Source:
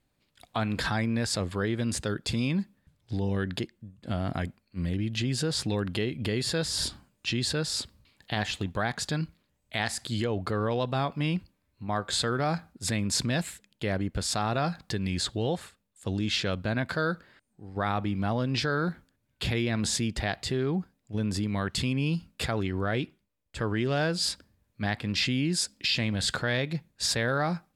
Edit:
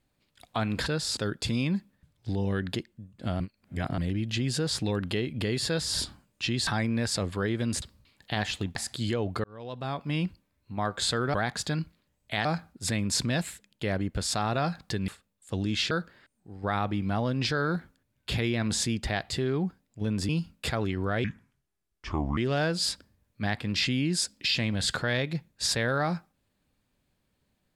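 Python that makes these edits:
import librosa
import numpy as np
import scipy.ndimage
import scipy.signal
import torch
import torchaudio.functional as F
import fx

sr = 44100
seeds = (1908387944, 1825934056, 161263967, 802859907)

y = fx.edit(x, sr, fx.swap(start_s=0.86, length_s=1.15, other_s=7.51, other_length_s=0.31),
    fx.reverse_span(start_s=4.24, length_s=0.58),
    fx.move(start_s=8.76, length_s=1.11, to_s=12.45),
    fx.fade_in_span(start_s=10.55, length_s=0.8),
    fx.cut(start_s=15.08, length_s=0.54),
    fx.cut(start_s=16.45, length_s=0.59),
    fx.cut(start_s=21.42, length_s=0.63),
    fx.speed_span(start_s=23.0, length_s=0.77, speed=0.68), tone=tone)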